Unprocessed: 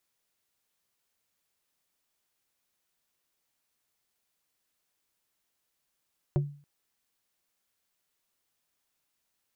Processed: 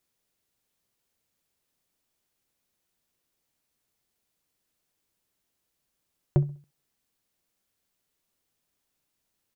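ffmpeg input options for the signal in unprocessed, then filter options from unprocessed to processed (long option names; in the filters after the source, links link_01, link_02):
-f lavfi -i "aevalsrc='0.1*pow(10,-3*t/0.42)*sin(2*PI*144*t)+0.0501*pow(10,-3*t/0.14)*sin(2*PI*360*t)+0.0251*pow(10,-3*t/0.08)*sin(2*PI*576*t)+0.0126*pow(10,-3*t/0.061)*sin(2*PI*720*t)+0.00631*pow(10,-3*t/0.044)*sin(2*PI*936*t)':duration=0.28:sample_rate=44100"
-filter_complex "[0:a]asplit=2[link_01][link_02];[link_02]adynamicsmooth=sensitivity=6:basefreq=730,volume=1dB[link_03];[link_01][link_03]amix=inputs=2:normalize=0,asplit=2[link_04][link_05];[link_05]adelay=66,lowpass=frequency=2000:poles=1,volume=-21.5dB,asplit=2[link_06][link_07];[link_07]adelay=66,lowpass=frequency=2000:poles=1,volume=0.36,asplit=2[link_08][link_09];[link_09]adelay=66,lowpass=frequency=2000:poles=1,volume=0.36[link_10];[link_04][link_06][link_08][link_10]amix=inputs=4:normalize=0"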